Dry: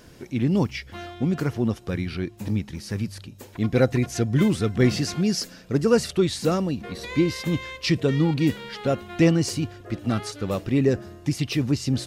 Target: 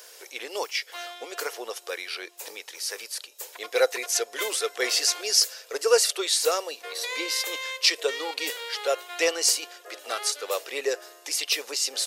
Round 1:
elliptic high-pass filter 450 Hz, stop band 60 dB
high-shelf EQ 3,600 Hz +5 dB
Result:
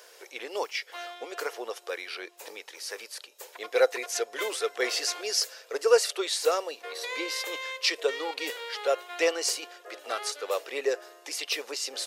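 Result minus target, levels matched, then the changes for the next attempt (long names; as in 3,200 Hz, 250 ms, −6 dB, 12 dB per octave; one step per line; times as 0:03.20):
8,000 Hz band −4.0 dB
change: high-shelf EQ 3,600 Hz +14.5 dB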